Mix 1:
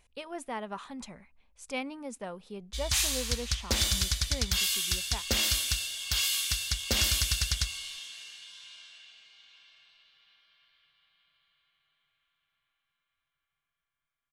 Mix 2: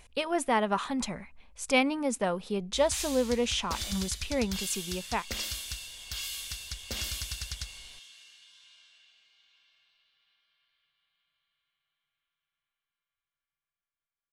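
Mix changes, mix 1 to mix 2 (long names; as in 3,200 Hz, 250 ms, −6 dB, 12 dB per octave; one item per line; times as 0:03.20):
speech +10.5 dB
background −8.5 dB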